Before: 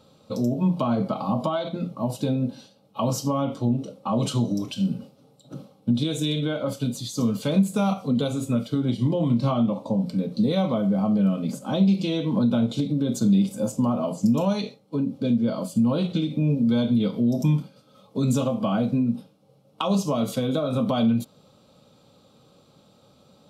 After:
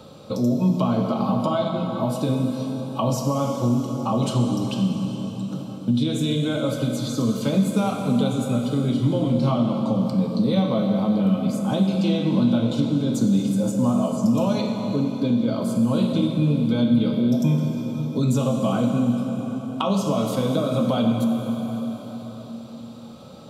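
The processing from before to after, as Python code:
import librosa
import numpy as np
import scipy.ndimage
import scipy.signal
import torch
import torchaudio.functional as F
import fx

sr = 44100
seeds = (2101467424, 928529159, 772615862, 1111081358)

y = fx.rev_plate(x, sr, seeds[0], rt60_s=3.7, hf_ratio=0.75, predelay_ms=0, drr_db=2.5)
y = fx.band_squash(y, sr, depth_pct=40)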